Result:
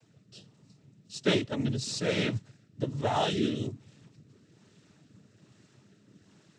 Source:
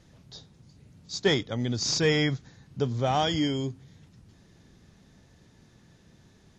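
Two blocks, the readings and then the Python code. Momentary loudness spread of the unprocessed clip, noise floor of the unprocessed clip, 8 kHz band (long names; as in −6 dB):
13 LU, −59 dBFS, −6.5 dB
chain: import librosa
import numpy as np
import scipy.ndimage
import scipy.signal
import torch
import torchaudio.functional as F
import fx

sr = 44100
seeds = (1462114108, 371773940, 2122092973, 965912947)

y = fx.noise_vocoder(x, sr, seeds[0], bands=12)
y = fx.rider(y, sr, range_db=10, speed_s=0.5)
y = fx.rotary(y, sr, hz=1.2)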